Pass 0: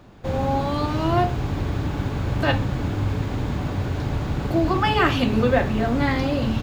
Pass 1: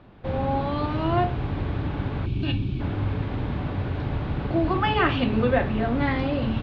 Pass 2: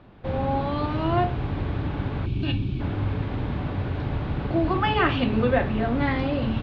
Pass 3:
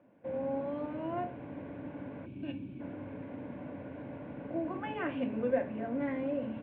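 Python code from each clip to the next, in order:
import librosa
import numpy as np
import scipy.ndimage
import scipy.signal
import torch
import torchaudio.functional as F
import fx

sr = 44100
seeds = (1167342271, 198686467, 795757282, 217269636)

y1 = fx.spec_box(x, sr, start_s=2.26, length_s=0.54, low_hz=410.0, high_hz=2200.0, gain_db=-16)
y1 = scipy.signal.sosfilt(scipy.signal.butter(4, 3700.0, 'lowpass', fs=sr, output='sos'), y1)
y1 = y1 * 10.0 ** (-2.5 / 20.0)
y2 = y1
y3 = fx.cabinet(y2, sr, low_hz=260.0, low_slope=12, high_hz=2100.0, hz=(270.0, 390.0, 550.0, 800.0, 1200.0, 1800.0), db=(5, -9, 6, -8, -9, -6))
y3 = fx.notch(y3, sr, hz=1300.0, q=9.9)
y3 = y3 * 10.0 ** (-8.5 / 20.0)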